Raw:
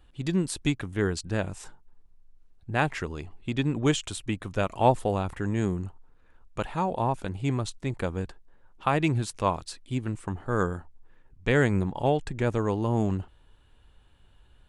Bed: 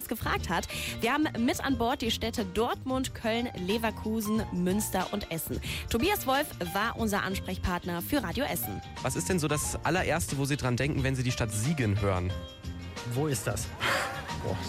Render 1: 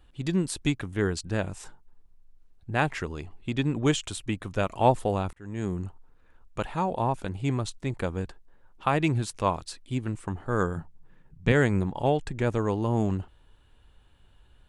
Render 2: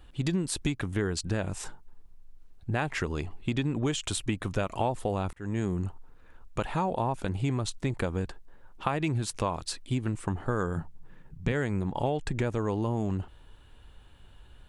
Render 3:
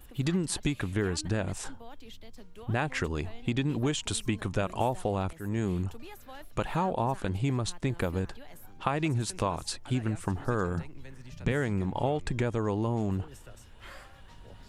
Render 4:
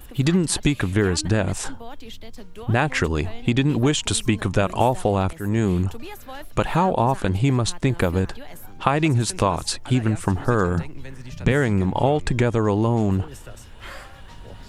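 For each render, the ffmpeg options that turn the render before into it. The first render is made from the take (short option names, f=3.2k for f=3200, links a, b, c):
-filter_complex "[0:a]asettb=1/sr,asplit=3[a][b][c];[a]atrim=end=10.764[d];[b]atrim=start=10.76:end=11.52,asetpts=PTS-STARTPTS,afade=t=in:d=0.004:c=qsin,afade=t=out:st=0.756:d=0.004:c=qsin,equalizer=f=160:t=o:w=0.77:g=14[e];[c]atrim=start=11.516[f];[d][e]acrossfade=d=0.004:c1=hsin:c2=qsin[g];[g][f]acrossfade=d=0.004:c1=qsin:c2=hsin,asplit=2[h][i];[h]atrim=end=5.33,asetpts=PTS-STARTPTS,afade=t=out:st=5.326:d=0.004:c=hsin[j];[i]atrim=start=5.33,asetpts=PTS-STARTPTS,afade=t=in:d=0.48[k];[j][k]concat=n=2:v=0:a=1"
-filter_complex "[0:a]asplit=2[a][b];[b]alimiter=limit=-20dB:level=0:latency=1:release=36,volume=-1.5dB[c];[a][c]amix=inputs=2:normalize=0,acompressor=threshold=-25dB:ratio=6"
-filter_complex "[1:a]volume=-20.5dB[a];[0:a][a]amix=inputs=2:normalize=0"
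-af "volume=9.5dB"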